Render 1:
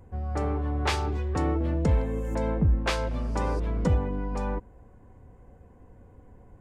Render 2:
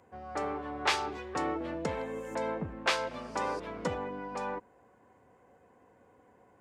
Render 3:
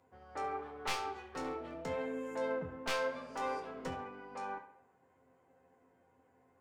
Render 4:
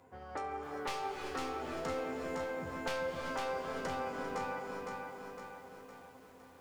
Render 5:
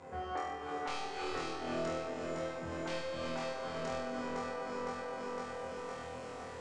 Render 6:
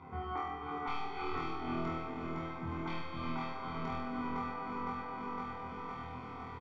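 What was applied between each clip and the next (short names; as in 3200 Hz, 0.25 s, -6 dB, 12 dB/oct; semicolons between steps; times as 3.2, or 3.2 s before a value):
weighting filter A
one-sided fold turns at -26 dBFS; resonator bank F2 fifth, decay 0.22 s; tape echo 68 ms, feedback 53%, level -11 dB, low-pass 4600 Hz; gain +2 dB
compressor, threshold -46 dBFS, peak gain reduction 14.5 dB; non-linear reverb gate 0.42 s rising, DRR 5.5 dB; lo-fi delay 0.51 s, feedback 55%, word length 12-bit, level -4 dB; gain +8 dB
steep low-pass 8600 Hz 36 dB/oct; compressor 4:1, threshold -50 dBFS, peak gain reduction 14.5 dB; on a send: flutter echo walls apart 4.2 m, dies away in 0.94 s; on the sum: gain +8 dB
air absorption 320 m; comb 0.9 ms, depth 100%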